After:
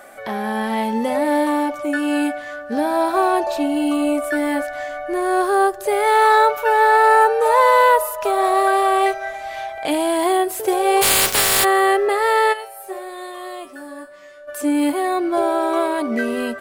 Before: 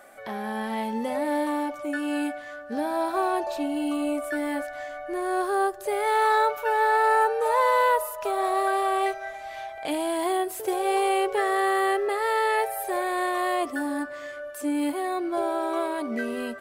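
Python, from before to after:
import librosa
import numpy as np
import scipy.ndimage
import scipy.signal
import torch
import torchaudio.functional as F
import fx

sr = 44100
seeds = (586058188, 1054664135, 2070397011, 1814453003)

y = fx.spec_flatten(x, sr, power=0.2, at=(11.01, 11.63), fade=0.02)
y = fx.comb_fb(y, sr, f0_hz=190.0, decay_s=0.32, harmonics='all', damping=0.0, mix_pct=90, at=(12.52, 14.47), fade=0.02)
y = y * 10.0 ** (8.0 / 20.0)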